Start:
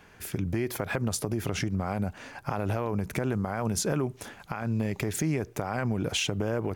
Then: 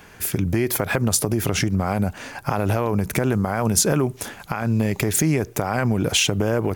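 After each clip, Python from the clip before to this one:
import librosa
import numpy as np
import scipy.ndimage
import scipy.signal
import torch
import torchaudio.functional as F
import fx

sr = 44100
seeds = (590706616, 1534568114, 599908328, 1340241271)

y = fx.high_shelf(x, sr, hz=7500.0, db=8.5)
y = F.gain(torch.from_numpy(y), 8.0).numpy()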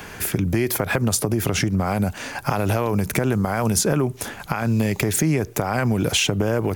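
y = fx.band_squash(x, sr, depth_pct=40)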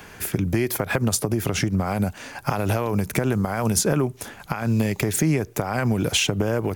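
y = fx.upward_expand(x, sr, threshold_db=-29.0, expansion=1.5)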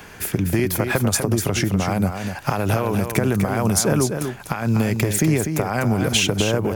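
y = x + 10.0 ** (-7.0 / 20.0) * np.pad(x, (int(247 * sr / 1000.0), 0))[:len(x)]
y = F.gain(torch.from_numpy(y), 2.0).numpy()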